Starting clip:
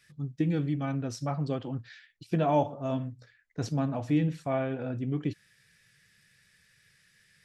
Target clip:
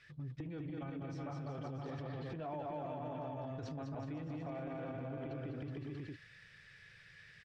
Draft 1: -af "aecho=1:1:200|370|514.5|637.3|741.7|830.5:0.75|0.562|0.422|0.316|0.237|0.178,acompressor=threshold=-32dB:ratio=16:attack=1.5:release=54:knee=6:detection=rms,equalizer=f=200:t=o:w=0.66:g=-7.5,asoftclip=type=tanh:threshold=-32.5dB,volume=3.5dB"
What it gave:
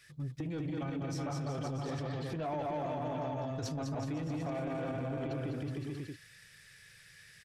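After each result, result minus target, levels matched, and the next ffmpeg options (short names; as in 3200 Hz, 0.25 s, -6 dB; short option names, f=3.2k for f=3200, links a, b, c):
compressor: peak gain reduction -7.5 dB; 4000 Hz band +3.5 dB
-af "aecho=1:1:200|370|514.5|637.3|741.7|830.5:0.75|0.562|0.422|0.316|0.237|0.178,acompressor=threshold=-40dB:ratio=16:attack=1.5:release=54:knee=6:detection=rms,equalizer=f=200:t=o:w=0.66:g=-7.5,asoftclip=type=tanh:threshold=-32.5dB,volume=3.5dB"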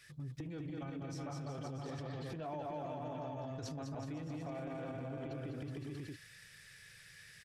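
4000 Hz band +5.0 dB
-af "aecho=1:1:200|370|514.5|637.3|741.7|830.5:0.75|0.562|0.422|0.316|0.237|0.178,acompressor=threshold=-40dB:ratio=16:attack=1.5:release=54:knee=6:detection=rms,lowpass=3.3k,equalizer=f=200:t=o:w=0.66:g=-7.5,asoftclip=type=tanh:threshold=-32.5dB,volume=3.5dB"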